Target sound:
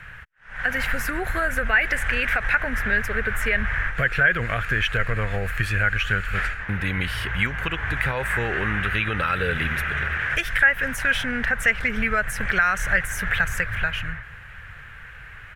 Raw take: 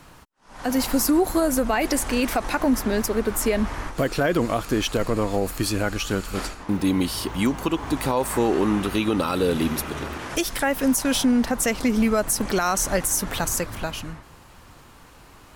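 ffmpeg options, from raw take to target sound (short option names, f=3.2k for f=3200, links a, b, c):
-filter_complex "[0:a]firequalizer=gain_entry='entry(110,0);entry(280,-23);entry(450,-11);entry(1000,-13);entry(1600,11);entry(4500,-18)':delay=0.05:min_phase=1,asplit=2[a][b];[b]acompressor=threshold=-29dB:ratio=6,volume=2.5dB[c];[a][c]amix=inputs=2:normalize=0"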